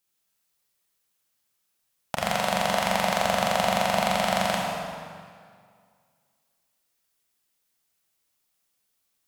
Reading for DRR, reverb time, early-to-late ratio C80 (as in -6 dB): -2.5 dB, 2.1 s, 0.5 dB